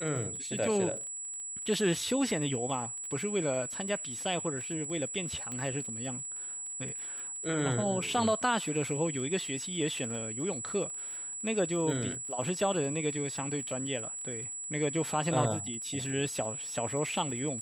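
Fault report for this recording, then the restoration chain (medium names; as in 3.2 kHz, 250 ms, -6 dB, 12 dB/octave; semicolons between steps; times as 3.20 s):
crackle 25 per s -39 dBFS
whine 7.8 kHz -37 dBFS
5.52 s: pop -25 dBFS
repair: de-click; band-stop 7.8 kHz, Q 30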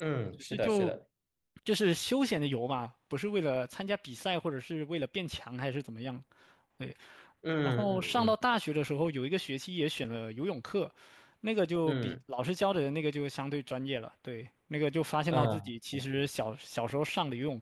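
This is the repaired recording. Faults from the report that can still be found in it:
nothing left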